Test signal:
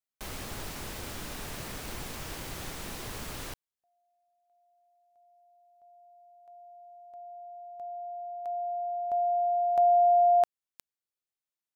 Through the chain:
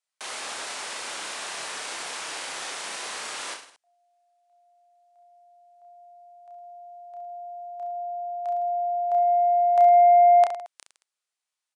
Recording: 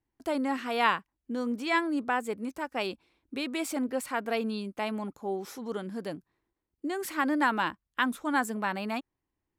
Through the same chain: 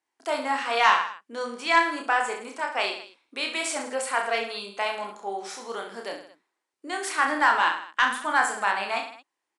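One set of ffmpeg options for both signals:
-filter_complex "[0:a]highpass=700,asplit=2[a][b];[b]aeval=exprs='0.266*sin(PI/2*1.78*val(0)/0.266)':c=same,volume=-7.5dB[c];[a][c]amix=inputs=2:normalize=0,aresample=22050,aresample=44100,aecho=1:1:30|66|109.2|161|223.2:0.631|0.398|0.251|0.158|0.1"

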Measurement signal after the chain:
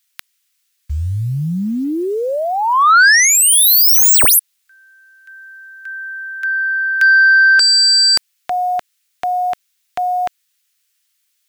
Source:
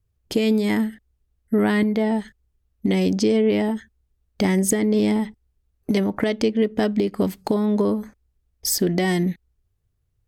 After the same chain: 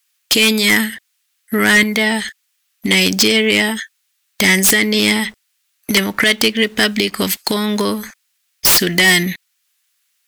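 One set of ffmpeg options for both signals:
-filter_complex "[0:a]acrossover=split=640|1600[a][b][c];[a]acrusher=bits=7:mix=0:aa=0.000001[d];[b]alimiter=level_in=1.5dB:limit=-24dB:level=0:latency=1,volume=-1.5dB[e];[c]aeval=exprs='0.376*sin(PI/2*7.94*val(0)/0.376)':c=same[f];[d][e][f]amix=inputs=3:normalize=0,volume=1.5dB"

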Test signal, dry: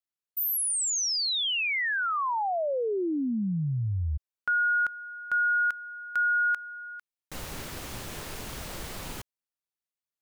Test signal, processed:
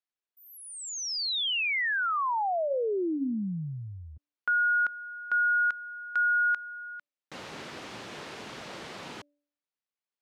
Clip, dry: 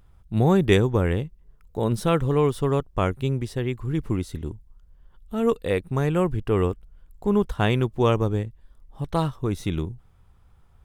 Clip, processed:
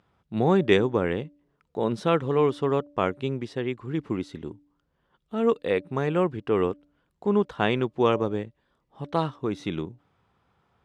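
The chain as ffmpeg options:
-af "highpass=200,lowpass=4.5k,bandreject=f=290.5:t=h:w=4,bandreject=f=581:t=h:w=4"

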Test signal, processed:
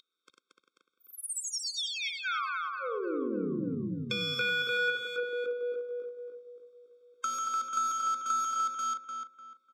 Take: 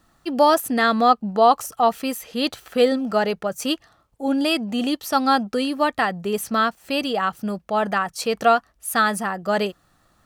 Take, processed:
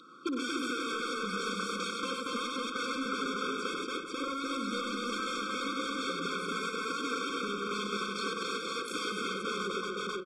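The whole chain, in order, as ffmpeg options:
-filter_complex "[0:a]aeval=exprs='(mod(10.6*val(0)+1,2)-1)/10.6':c=same,highpass=f=230:w=0.5412,highpass=f=230:w=1.3066,equalizer=f=230:t=q:w=4:g=-4,equalizer=f=590:t=q:w=4:g=4,equalizer=f=1.4k:t=q:w=4:g=4,equalizer=f=2.4k:t=q:w=4:g=-6,equalizer=f=4.5k:t=q:w=4:g=-5,equalizer=f=6.3k:t=q:w=4:g=-9,lowpass=f=6.5k:w=0.5412,lowpass=f=6.5k:w=1.3066,asoftclip=type=tanh:threshold=-17.5dB,asplit=2[a][b];[b]aecho=0:1:58|98|229|489:0.355|0.596|0.668|0.398[c];[a][c]amix=inputs=2:normalize=0,acompressor=threshold=-41dB:ratio=5,aeval=exprs='val(0)+0.00398*sin(2*PI*3800*n/s)':c=same,asplit=2[d][e];[e]adelay=298,lowpass=f=2.8k:p=1,volume=-4dB,asplit=2[f][g];[g]adelay=298,lowpass=f=2.8k:p=1,volume=0.32,asplit=2[h][i];[i]adelay=298,lowpass=f=2.8k:p=1,volume=0.32,asplit=2[j][k];[k]adelay=298,lowpass=f=2.8k:p=1,volume=0.32[l];[f][h][j][l]amix=inputs=4:normalize=0[m];[d][m]amix=inputs=2:normalize=0,afftfilt=real='re*eq(mod(floor(b*sr/1024/530),2),0)':imag='im*eq(mod(floor(b*sr/1024/530),2),0)':win_size=1024:overlap=0.75,volume=9dB"

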